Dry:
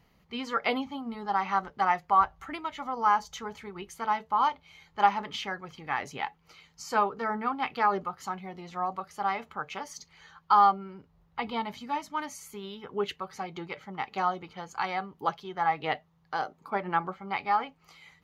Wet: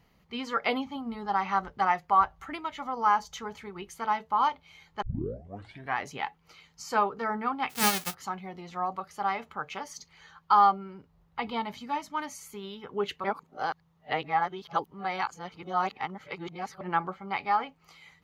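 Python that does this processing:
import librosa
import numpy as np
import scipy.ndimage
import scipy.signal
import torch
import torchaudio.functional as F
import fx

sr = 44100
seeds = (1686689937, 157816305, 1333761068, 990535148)

y = fx.peak_eq(x, sr, hz=61.0, db=10.5, octaves=1.4, at=(0.96, 1.87))
y = fx.envelope_flatten(y, sr, power=0.1, at=(7.69, 8.13), fade=0.02)
y = fx.edit(y, sr, fx.tape_start(start_s=5.02, length_s=0.96),
    fx.reverse_span(start_s=13.24, length_s=3.57), tone=tone)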